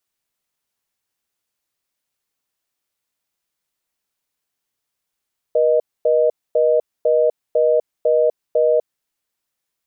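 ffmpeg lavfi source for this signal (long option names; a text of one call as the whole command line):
ffmpeg -f lavfi -i "aevalsrc='0.178*(sin(2*PI*480*t)+sin(2*PI*620*t))*clip(min(mod(t,0.5),0.25-mod(t,0.5))/0.005,0,1)':duration=3.48:sample_rate=44100" out.wav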